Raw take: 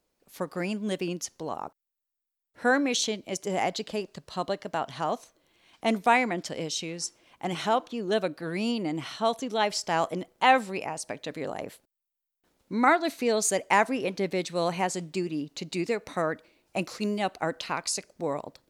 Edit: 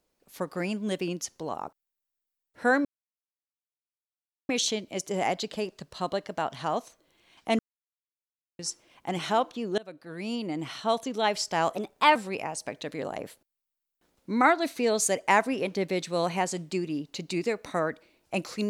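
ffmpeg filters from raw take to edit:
-filter_complex "[0:a]asplit=7[a][b][c][d][e][f][g];[a]atrim=end=2.85,asetpts=PTS-STARTPTS,afade=t=out:st=2.846:d=0.004:c=hsin,apad=pad_dur=1.64[h];[b]atrim=start=2.85:end=5.95,asetpts=PTS-STARTPTS,afade=t=in:d=0.004:c=hsin,afade=t=out:st=3.096:d=0.004:c=hsin[i];[c]atrim=start=5.95:end=6.95,asetpts=PTS-STARTPTS,volume=0[j];[d]atrim=start=6.95:end=8.14,asetpts=PTS-STARTPTS,afade=t=in:d=0.004:c=hsin,afade=t=out:st=1.186:d=0.004:c=hsin:silence=0.0668344[k];[e]atrim=start=8.14:end=10.114,asetpts=PTS-STARTPTS,afade=t=in:d=1.32:c=qsin:silence=0.0668344[l];[f]atrim=start=10.11:end=10.58,asetpts=PTS-STARTPTS,asetrate=51156,aresample=44100,atrim=end_sample=17868,asetpts=PTS-STARTPTS[m];[g]atrim=start=10.576[n];[h][i][j][k][l]concat=n=5:v=0:a=1[o];[o][m]acrossfade=d=0.004:c1=hsin:c2=hsin[p];[p][n]acrossfade=d=0.004:c1=hsin:c2=hsin"

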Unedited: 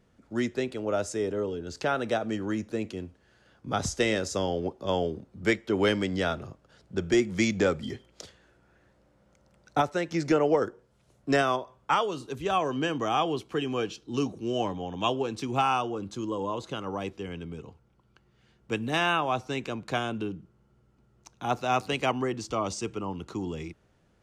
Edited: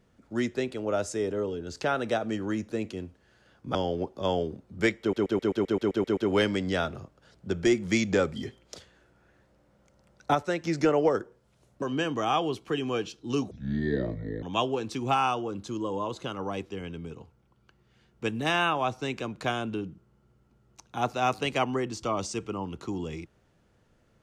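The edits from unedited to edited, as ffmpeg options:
-filter_complex "[0:a]asplit=14[a][b][c][d][e][f][g][h][i][j][k][l][m][n];[a]atrim=end=3.752[o];[b]atrim=start=4.388:end=5.772[p];[c]atrim=start=5.638:end=5.772[q];[d]atrim=start=5.638:end=5.772[r];[e]atrim=start=5.638:end=5.772[s];[f]atrim=start=5.638:end=5.772[t];[g]atrim=start=5.638:end=5.772[u];[h]atrim=start=5.638:end=5.772[v];[i]atrim=start=5.638:end=5.772[w];[j]atrim=start=5.638:end=5.772[x];[k]atrim=start=5.638:end=11.292[y];[l]atrim=start=12.658:end=14.354[z];[m]atrim=start=14.35:end=14.9,asetpts=PTS-STARTPTS,asetrate=26460,aresample=44100[aa];[n]atrim=start=14.896[ab];[o][p]acrossfade=d=0.004:c1=hsin:c2=hsin[ac];[ac][q]acrossfade=d=0.004:c1=hsin:c2=hsin[ad];[ad][r]acrossfade=d=0.004:c1=hsin:c2=hsin[ae];[ae][s]acrossfade=d=0.004:c1=hsin:c2=hsin[af];[af][t]acrossfade=d=0.004:c1=hsin:c2=hsin[ag];[ag][u]acrossfade=d=0.004:c1=hsin:c2=hsin[ah];[ah][v]acrossfade=d=0.004:c1=hsin:c2=hsin[ai];[ai][w]acrossfade=d=0.004:c1=hsin:c2=hsin[aj];[aj][x]acrossfade=d=0.004:c1=hsin:c2=hsin[ak];[ak][y]acrossfade=d=0.004:c1=hsin:c2=hsin[al];[al][z]acrossfade=d=0.004:c1=hsin:c2=hsin[am];[am][aa]acrossfade=d=0.004:c1=hsin:c2=hsin[an];[an][ab]acrossfade=d=0.004:c1=hsin:c2=hsin"

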